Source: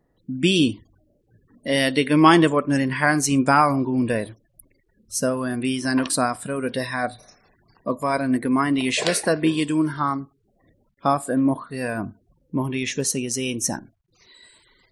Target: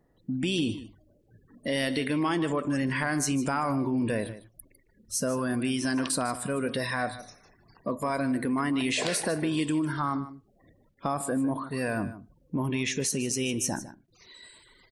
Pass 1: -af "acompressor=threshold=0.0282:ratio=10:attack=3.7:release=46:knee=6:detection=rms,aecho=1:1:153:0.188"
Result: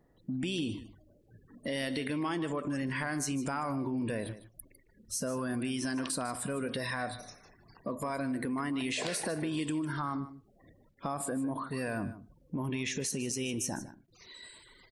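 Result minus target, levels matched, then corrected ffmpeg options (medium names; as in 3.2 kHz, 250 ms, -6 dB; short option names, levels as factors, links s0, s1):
compression: peak gain reduction +6.5 dB
-af "acompressor=threshold=0.0631:ratio=10:attack=3.7:release=46:knee=6:detection=rms,aecho=1:1:153:0.188"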